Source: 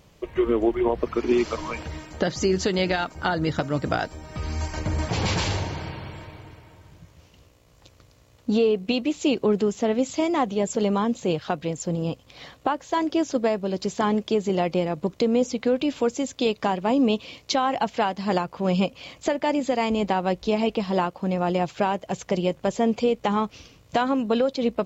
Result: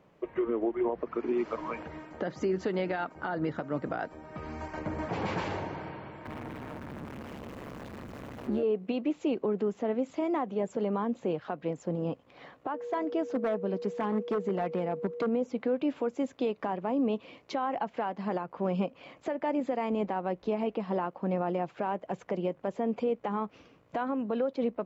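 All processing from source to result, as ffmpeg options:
-filter_complex "[0:a]asettb=1/sr,asplit=3[a][b][c];[a]atrim=end=6.254[d];[b]atrim=start=6.25:end=8.63,asetpts=PTS-STARTPTS,afade=t=in:d=0.004:c=qsin,afade=t=out:st=2.376:d=0.004:c=qsin,aeval=exprs='val(0)+0.5*0.0398*sgn(val(0))':c=same,lowshelf=f=200:g=6.5,tremolo=f=140:d=0.824[e];[c]atrim=start=8.626[f];[d][e]acrossfade=d=0.004:c1=hsin:c2=qsin[g];[g][f]acrossfade=d=0.004:c1=qsin:c2=hsin,asettb=1/sr,asplit=3[h][i][j];[h]atrim=end=12.744[k];[i]atrim=start=12.74:end=15.29,asetpts=PTS-STARTPTS,afade=t=in:d=0.004:c=qsin,afade=t=out:st=2.546:d=0.004:c=qsin,aecho=1:1:4.5:0.32,atrim=end_sample=112455,aeval=exprs='0.168*(abs(mod(val(0)/0.168+3,4)-2)-1)':c=same,aeval=exprs='val(0)+0.0251*sin(2*PI*480*n/s)':c=same[l];[j]atrim=start=15.286[m];[k][l]acrossfade=d=0.004:c1=hsin:c2=qsin[n];[n][m]acrossfade=d=0.004:c1=qsin:c2=hsin,acrossover=split=160 2200:gain=0.158 1 0.112[o][p][q];[o][p][q]amix=inputs=3:normalize=0,alimiter=limit=-18dB:level=0:latency=1:release=181,volume=-3dB"

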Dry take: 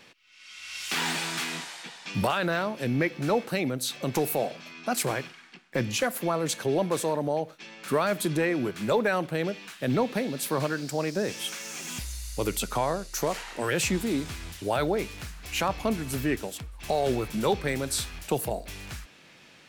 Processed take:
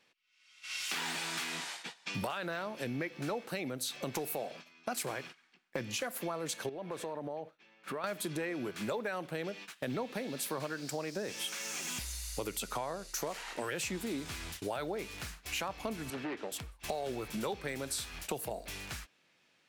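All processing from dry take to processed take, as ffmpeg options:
-filter_complex "[0:a]asettb=1/sr,asplit=3[a][b][c];[a]atrim=end=6.694[d];[b]atrim=start=6.69:end=8.04,asetpts=PTS-STARTPTS,afade=t=in:d=0.004:c=qsin,afade=t=out:st=1.346:d=0.004:c=qsin,bass=f=250:g=-1,treble=f=4k:g=-11,acompressor=threshold=-35dB:ratio=3:attack=3.2:release=140:knee=1:detection=peak[e];[c]atrim=start=8.036[f];[d][e]acrossfade=d=0.004:c1=hsin:c2=qsin[g];[g][f]acrossfade=d=0.004:c1=qsin:c2=hsin,asettb=1/sr,asplit=3[h][i][j];[h]atrim=end=16.104[k];[i]atrim=start=16.1:end=16.52,asetpts=PTS-STARTPTS,afade=t=in:d=0.004:c=qsin,afade=t=out:st=0.416:d=0.004:c=qsin,asoftclip=type=hard:threshold=-27.5dB,highpass=210,lowpass=3k[l];[j]atrim=start=16.516[m];[k][l]acrossfade=d=0.004:c1=hsin:c2=qsin[n];[n][m]acrossfade=d=0.004:c1=qsin:c2=hsin,agate=range=-16dB:threshold=-41dB:ratio=16:detection=peak,lowshelf=f=230:g=-7,acompressor=threshold=-35dB:ratio=4"

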